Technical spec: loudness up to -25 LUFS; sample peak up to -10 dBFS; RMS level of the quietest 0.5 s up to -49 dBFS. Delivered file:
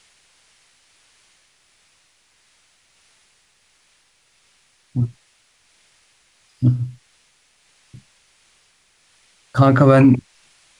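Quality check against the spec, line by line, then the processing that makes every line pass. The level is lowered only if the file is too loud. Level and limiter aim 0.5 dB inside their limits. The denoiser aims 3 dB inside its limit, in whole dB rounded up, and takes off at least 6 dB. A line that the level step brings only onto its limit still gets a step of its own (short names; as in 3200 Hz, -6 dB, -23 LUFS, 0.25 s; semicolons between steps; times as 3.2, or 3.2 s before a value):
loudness -17.0 LUFS: fail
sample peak -4.0 dBFS: fail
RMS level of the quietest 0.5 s -60 dBFS: OK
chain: gain -8.5 dB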